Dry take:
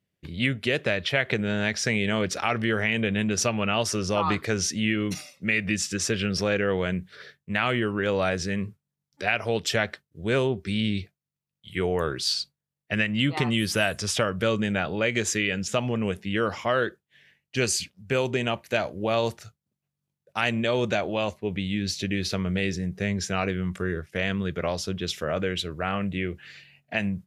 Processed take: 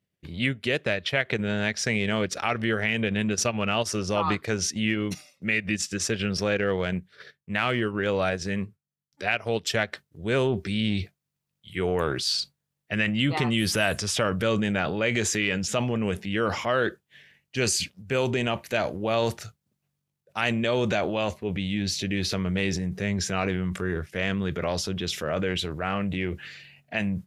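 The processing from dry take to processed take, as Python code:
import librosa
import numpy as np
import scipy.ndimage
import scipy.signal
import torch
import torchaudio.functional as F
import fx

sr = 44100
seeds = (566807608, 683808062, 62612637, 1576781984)

y = fx.transient(x, sr, attack_db=-2, sustain_db=fx.steps((0.0, -8.0), (9.92, 6.0)))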